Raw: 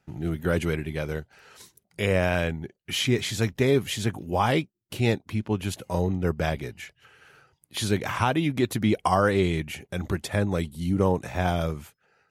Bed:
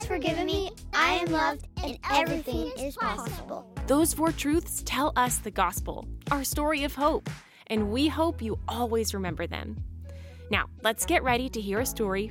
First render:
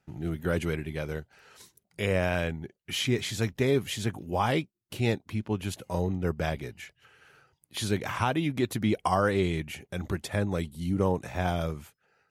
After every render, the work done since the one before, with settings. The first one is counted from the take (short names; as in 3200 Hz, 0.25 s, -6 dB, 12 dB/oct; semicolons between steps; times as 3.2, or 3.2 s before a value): gain -3.5 dB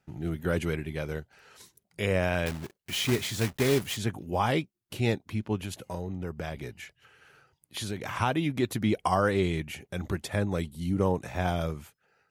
2.46–3.97 block floating point 3-bit; 5.64–8.16 compressor 3:1, threshold -31 dBFS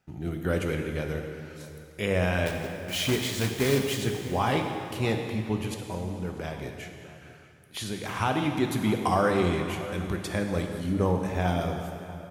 outdoor echo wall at 110 m, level -16 dB; plate-style reverb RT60 2.5 s, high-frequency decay 0.9×, pre-delay 0 ms, DRR 3.5 dB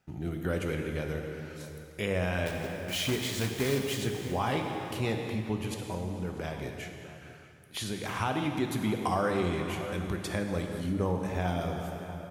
compressor 1.5:1, threshold -33 dBFS, peak gain reduction 5.5 dB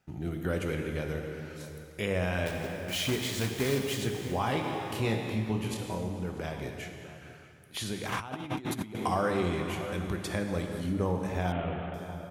4.61–6.08 doubler 27 ms -5 dB; 8.12–8.95 negative-ratio compressor -35 dBFS, ratio -0.5; 11.52–11.94 CVSD 16 kbps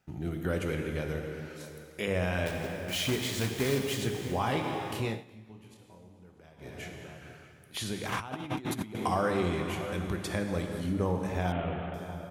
1.47–2.08 bell 100 Hz -12.5 dB; 4.85–6.97 dip -19.5 dB, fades 0.40 s equal-power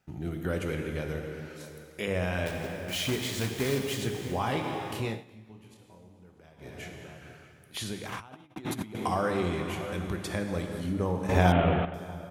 7.83–8.56 fade out; 11.29–11.85 gain +9 dB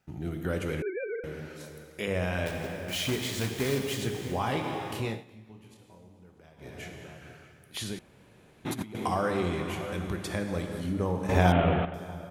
0.82–1.24 sine-wave speech; 7.99–8.65 room tone